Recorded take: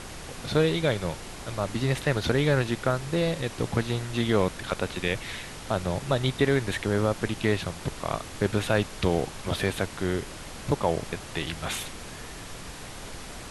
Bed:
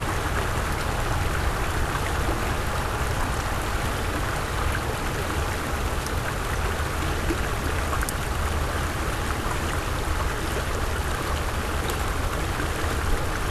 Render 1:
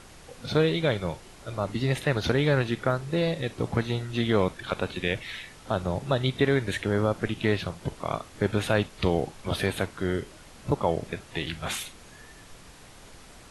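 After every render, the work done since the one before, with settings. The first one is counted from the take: noise print and reduce 9 dB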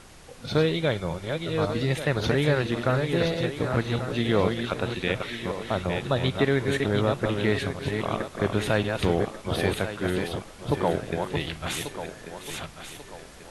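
chunks repeated in reverse 552 ms, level -5 dB; thinning echo 1139 ms, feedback 39%, high-pass 180 Hz, level -10.5 dB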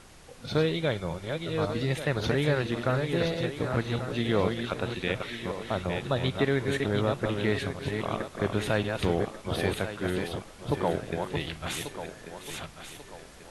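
trim -3 dB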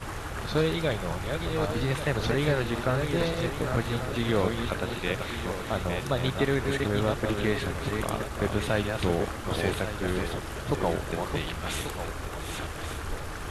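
add bed -10 dB

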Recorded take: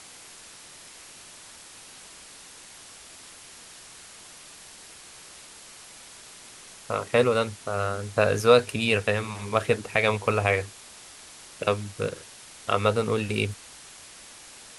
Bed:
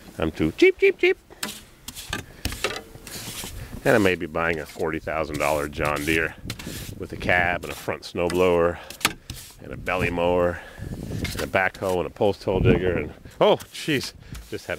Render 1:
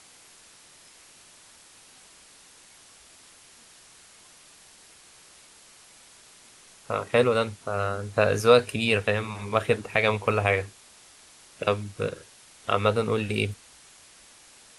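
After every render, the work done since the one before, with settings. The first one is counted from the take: noise print and reduce 6 dB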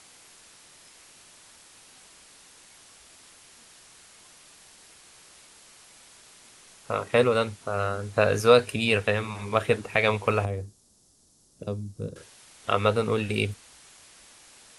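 10.45–12.16 s: FFT filter 220 Hz 0 dB, 2.3 kHz -27 dB, 5.4 kHz -8 dB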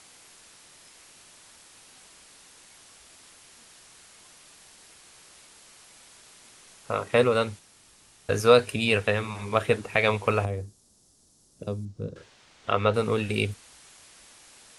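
7.59–8.29 s: room tone; 11.85–12.94 s: distance through air 100 m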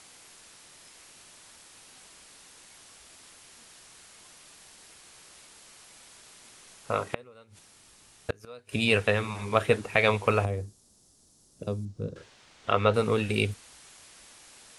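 7.06–8.73 s: inverted gate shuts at -16 dBFS, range -29 dB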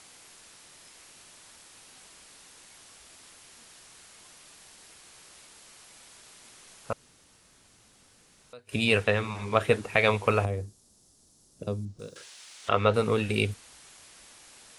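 6.93–8.53 s: room tone; 9.04–9.61 s: Bessel low-pass 8 kHz; 11.99–12.69 s: tilt EQ +4.5 dB/octave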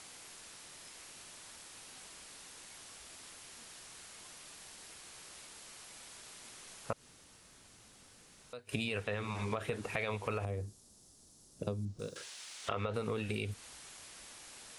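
peak limiter -15.5 dBFS, peak gain reduction 9.5 dB; compression 12:1, threshold -32 dBFS, peak gain reduction 10.5 dB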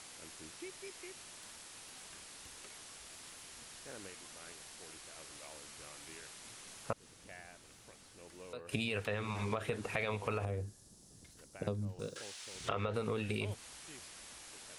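add bed -33 dB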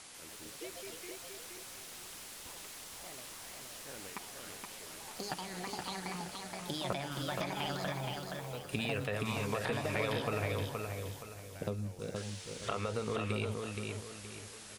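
ever faster or slower copies 146 ms, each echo +5 st, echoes 2; on a send: feedback delay 472 ms, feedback 35%, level -4 dB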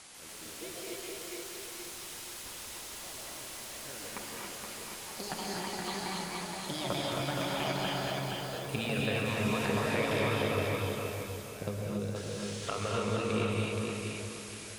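on a send: two-band feedback delay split 1.1 kHz, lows 162 ms, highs 219 ms, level -12.5 dB; on the sum: gated-style reverb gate 310 ms rising, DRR -2 dB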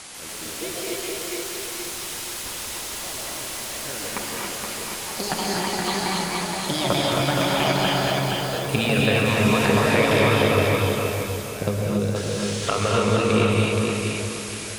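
trim +12 dB

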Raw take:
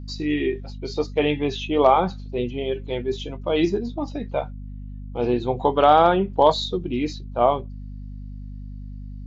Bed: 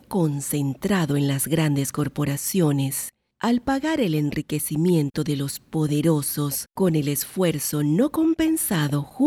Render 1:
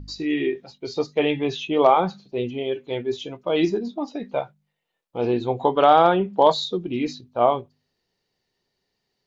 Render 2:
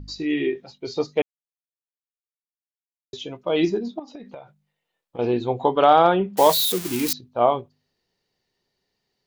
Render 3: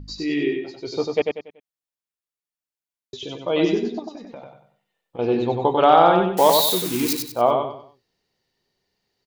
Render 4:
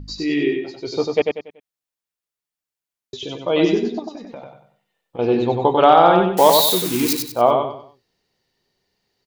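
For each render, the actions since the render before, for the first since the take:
de-hum 50 Hz, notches 5
1.22–3.13 s: mute; 3.99–5.19 s: compression 20:1, threshold -34 dBFS; 6.37–7.13 s: zero-crossing glitches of -15 dBFS
feedback delay 95 ms, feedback 34%, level -4 dB
trim +3 dB; peak limiter -1 dBFS, peak gain reduction 2.5 dB

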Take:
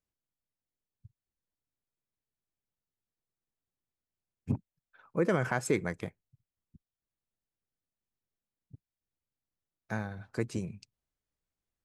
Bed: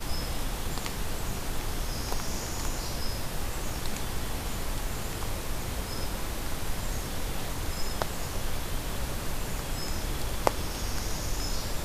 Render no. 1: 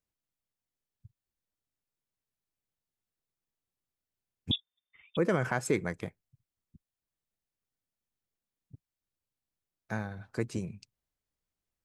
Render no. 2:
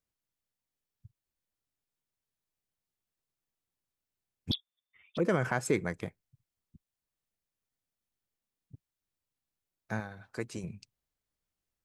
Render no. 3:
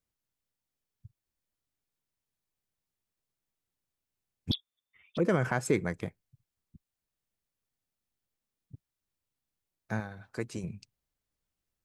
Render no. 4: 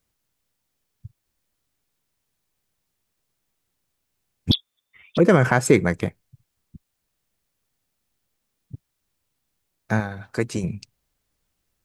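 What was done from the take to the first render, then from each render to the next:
4.51–5.17 s: frequency inversion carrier 3.6 kHz
4.51–5.25 s: touch-sensitive flanger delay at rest 11.9 ms, full sweep at -24 dBFS; 10.00–10.64 s: bass shelf 380 Hz -8 dB
bass shelf 350 Hz +3 dB
trim +11.5 dB

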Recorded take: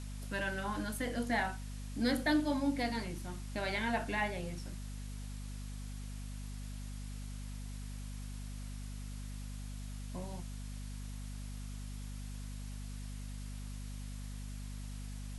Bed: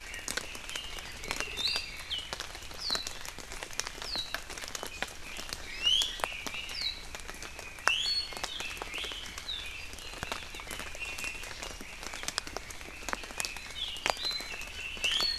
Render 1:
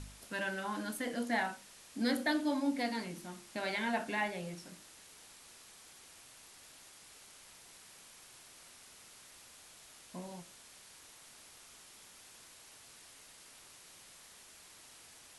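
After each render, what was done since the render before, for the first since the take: de-hum 50 Hz, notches 12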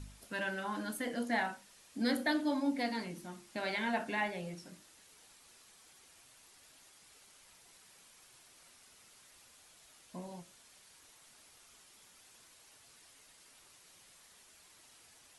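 noise reduction 6 dB, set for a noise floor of -57 dBFS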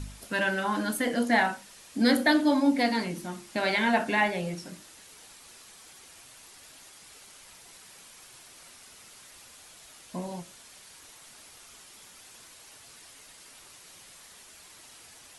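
trim +10 dB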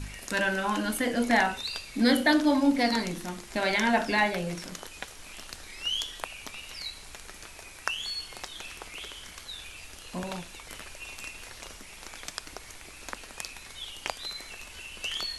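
add bed -4 dB

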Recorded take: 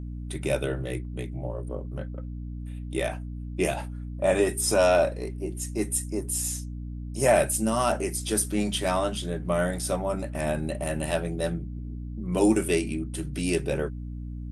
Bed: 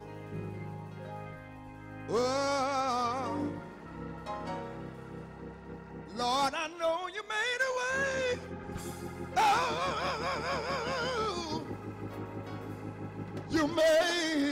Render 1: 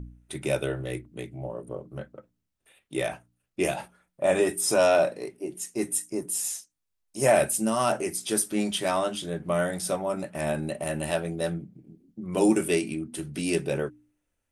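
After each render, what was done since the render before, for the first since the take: de-hum 60 Hz, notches 5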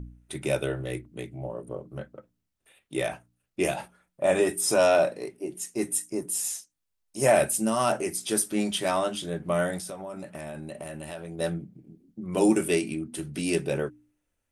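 9.78–11.39 s: compression, threshold -34 dBFS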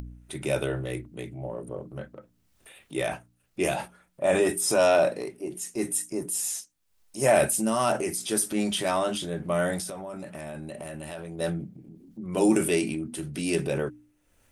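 transient shaper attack -1 dB, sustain +5 dB; upward compressor, threshold -41 dBFS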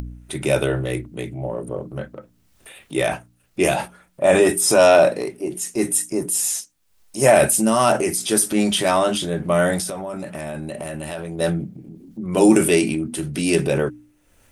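trim +8 dB; peak limiter -3 dBFS, peak gain reduction 2 dB

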